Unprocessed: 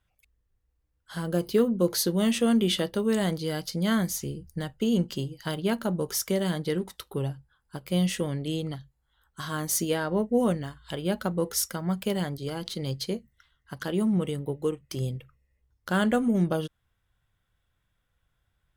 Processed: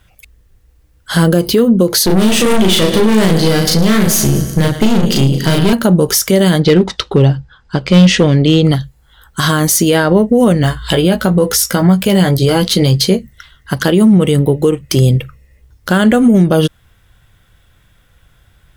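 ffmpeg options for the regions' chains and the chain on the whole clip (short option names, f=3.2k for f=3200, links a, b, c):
-filter_complex "[0:a]asettb=1/sr,asplit=3[a][b][c];[a]atrim=end=2.064[d];[b]atrim=start=2.06:end=5.73,asetpts=PTS-STARTPTS,afade=t=in:d=0.004:c=qsin,afade=t=out:st=3.666:d=0.004:c=qsin,aecho=1:1:110|220|330|440|550|660:0.178|0.103|0.0598|0.0347|0.0201|0.0117,atrim=end_sample=161847,aeval=exprs='(tanh(31.6*val(0)+0.55)-tanh(0.55))/31.6':c=same,asplit=2[e][f];[f]adelay=37,volume=-2dB[g];[e][g]amix=inputs=2:normalize=0,atrim=end_sample=161847[h];[c]atrim=start=5.726[i];[d][h]acrossfade=d=0.004:c1=hsin:c2=qsin[j];[j][i]acrossfade=d=0.004:c1=qsin:c2=hsin,asettb=1/sr,asplit=3[k][l][m];[k]atrim=end=6.604[n];[l]atrim=start=6.6:end=8.65,asetpts=PTS-STARTPTS,afade=t=in:d=0.004:c=qsin,afade=t=out:st=2.046:d=0.004:c=qsin,lowpass=f=6k:w=0.5412,lowpass=f=6k:w=1.3066,volume=23dB,asoftclip=hard,volume=-23dB[o];[m]atrim=start=8.646[p];[n][o]acrossfade=d=0.004:c1=hsin:c2=qsin[q];[q][p]acrossfade=d=0.004:c1=qsin:c2=hsin,asettb=1/sr,asplit=3[r][s][t];[r]atrim=end=10.624[u];[s]atrim=start=10.62:end=13.16,asetpts=PTS-STARTPTS,afade=t=in:d=0.004:c=qsin,afade=t=out:st=2.536:d=0.004:c=qsin,acompressor=mode=upward:threshold=-47dB:ratio=2.5:attack=3.2:release=140:knee=2.83:detection=peak,asplit=2[v][w];[w]adelay=16,volume=-7dB[x];[v][x]amix=inputs=2:normalize=0,atrim=end_sample=112014[y];[t]atrim=start=13.156[z];[u][y]acrossfade=d=0.004:c1=hsin:c2=qsin[aa];[aa][z]acrossfade=d=0.004:c1=qsin:c2=hsin,equalizer=f=980:w=1.5:g=-3,acompressor=threshold=-28dB:ratio=6,alimiter=level_in=25.5dB:limit=-1dB:release=50:level=0:latency=1,volume=-1dB"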